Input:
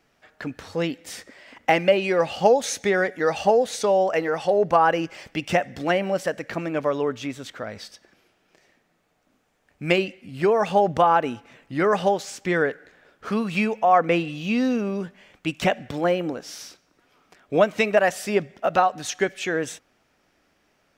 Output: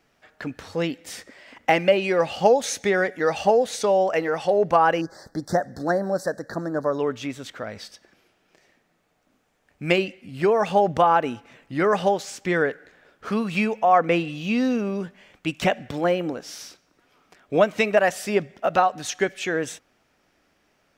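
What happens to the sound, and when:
0:05.01–0:06.99: elliptic band-stop filter 1,700–4,100 Hz, stop band 60 dB

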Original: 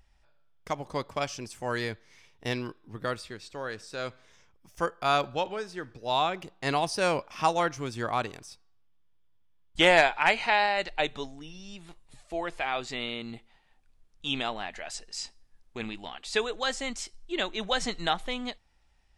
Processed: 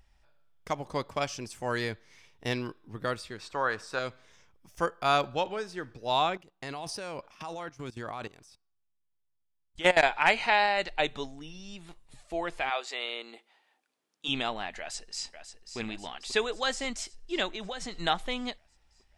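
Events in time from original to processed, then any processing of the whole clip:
0:03.38–0:03.99: parametric band 1,100 Hz +12 dB 1.5 octaves
0:06.37–0:10.03: output level in coarse steps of 19 dB
0:12.69–0:14.27: high-pass filter 490 Hz → 220 Hz 24 dB per octave
0:14.79–0:15.77: delay throw 540 ms, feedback 65%, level −9.5 dB
0:17.50–0:18.00: downward compressor 8 to 1, threshold −33 dBFS

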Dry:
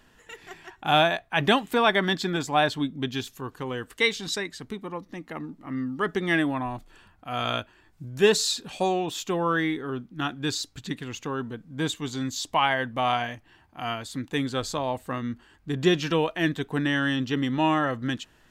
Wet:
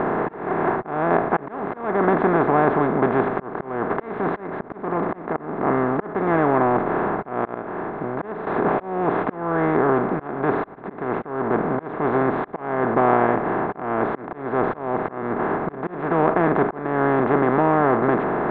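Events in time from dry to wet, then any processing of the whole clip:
0:07.54–0:08.47: expander for the loud parts 2.5 to 1, over −31 dBFS
whole clip: compressor on every frequency bin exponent 0.2; low-pass filter 1,400 Hz 24 dB per octave; volume swells 342 ms; level −2 dB

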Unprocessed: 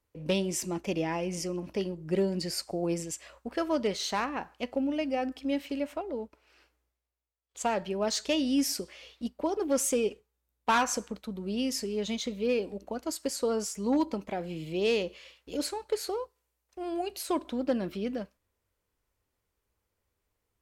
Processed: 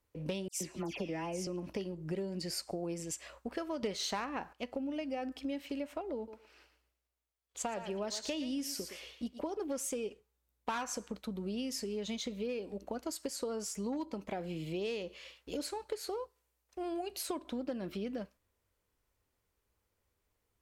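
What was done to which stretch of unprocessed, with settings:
0:00.48–0:01.47: all-pass dispersion lows, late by 128 ms, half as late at 2,200 Hz
0:03.83–0:04.53: clip gain +11 dB
0:06.16–0:09.54: feedback echo with a high-pass in the loop 115 ms, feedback 24%, high-pass 480 Hz, level −10 dB
whole clip: downward compressor, threshold −35 dBFS

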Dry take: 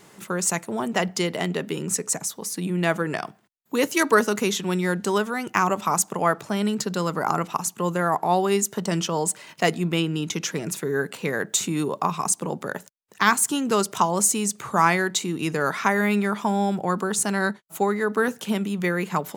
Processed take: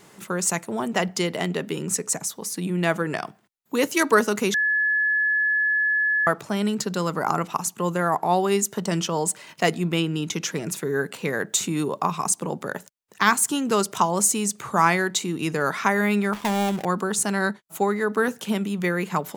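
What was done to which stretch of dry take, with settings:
0:04.54–0:06.27: beep over 1,710 Hz −18.5 dBFS
0:16.33–0:16.85: gap after every zero crossing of 0.27 ms

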